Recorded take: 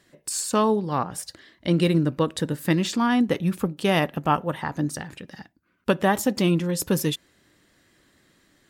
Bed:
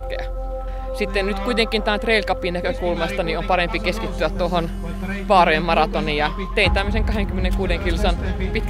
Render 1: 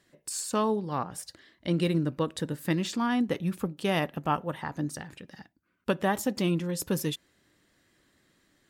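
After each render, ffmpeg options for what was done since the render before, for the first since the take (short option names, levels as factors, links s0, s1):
-af "volume=0.501"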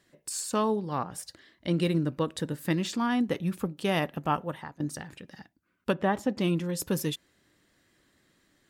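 -filter_complex "[0:a]asplit=3[s0][s1][s2];[s0]afade=t=out:st=5.92:d=0.02[s3];[s1]aemphasis=mode=reproduction:type=75fm,afade=t=in:st=5.92:d=0.02,afade=t=out:st=6.4:d=0.02[s4];[s2]afade=t=in:st=6.4:d=0.02[s5];[s3][s4][s5]amix=inputs=3:normalize=0,asplit=2[s6][s7];[s6]atrim=end=4.8,asetpts=PTS-STARTPTS,afade=t=out:st=4.34:d=0.46:c=qsin:silence=0.0944061[s8];[s7]atrim=start=4.8,asetpts=PTS-STARTPTS,afade=t=in:d=0.004:c=hsin:silence=0.0944061[s9];[s8][s9]concat=n=2:v=0:a=1"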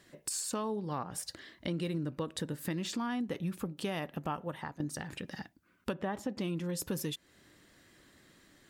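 -filter_complex "[0:a]asplit=2[s0][s1];[s1]alimiter=limit=0.0668:level=0:latency=1,volume=0.891[s2];[s0][s2]amix=inputs=2:normalize=0,acompressor=threshold=0.0158:ratio=3"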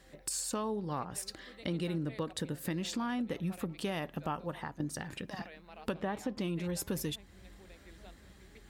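-filter_complex "[1:a]volume=0.0188[s0];[0:a][s0]amix=inputs=2:normalize=0"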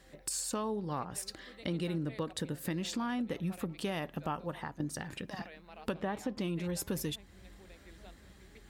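-af anull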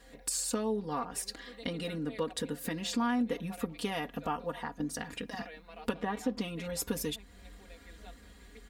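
-af "equalizer=f=180:w=5.8:g=-9,aecho=1:1:4.2:0.95"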